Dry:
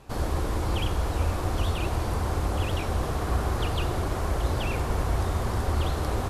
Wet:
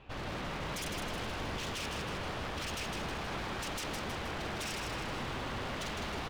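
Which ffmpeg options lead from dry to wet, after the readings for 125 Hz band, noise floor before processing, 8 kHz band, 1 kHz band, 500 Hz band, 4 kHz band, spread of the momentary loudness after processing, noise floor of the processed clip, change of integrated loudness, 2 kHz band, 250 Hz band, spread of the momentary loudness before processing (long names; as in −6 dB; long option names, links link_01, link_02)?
−16.0 dB, −30 dBFS, −3.5 dB, −7.5 dB, −9.0 dB, −2.0 dB, 1 LU, −39 dBFS, −9.5 dB, −1.5 dB, −8.5 dB, 1 LU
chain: -af "lowpass=frequency=2900:width_type=q:width=2.9,aeval=exprs='0.0355*(abs(mod(val(0)/0.0355+3,4)-2)-1)':channel_layout=same,aecho=1:1:158|316|474|632|790|948|1106:0.596|0.31|0.161|0.0838|0.0436|0.0226|0.0118,volume=-6dB"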